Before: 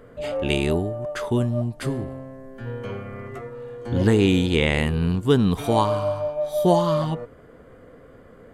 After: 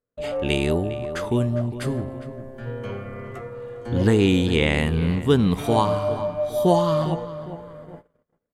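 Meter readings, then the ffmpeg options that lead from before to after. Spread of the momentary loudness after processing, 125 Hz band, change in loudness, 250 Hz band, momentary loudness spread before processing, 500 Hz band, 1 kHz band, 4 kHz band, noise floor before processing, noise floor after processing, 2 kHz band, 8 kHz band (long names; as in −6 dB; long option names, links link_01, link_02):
17 LU, 0.0 dB, 0.0 dB, +0.5 dB, 17 LU, +0.5 dB, 0.0 dB, 0.0 dB, −48 dBFS, −73 dBFS, 0.0 dB, 0.0 dB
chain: -filter_complex "[0:a]asplit=2[link_01][link_02];[link_02]adelay=406,lowpass=frequency=2600:poles=1,volume=-13dB,asplit=2[link_03][link_04];[link_04]adelay=406,lowpass=frequency=2600:poles=1,volume=0.44,asplit=2[link_05][link_06];[link_06]adelay=406,lowpass=frequency=2600:poles=1,volume=0.44,asplit=2[link_07][link_08];[link_08]adelay=406,lowpass=frequency=2600:poles=1,volume=0.44[link_09];[link_01][link_03][link_05][link_07][link_09]amix=inputs=5:normalize=0,agate=range=-40dB:threshold=-40dB:ratio=16:detection=peak"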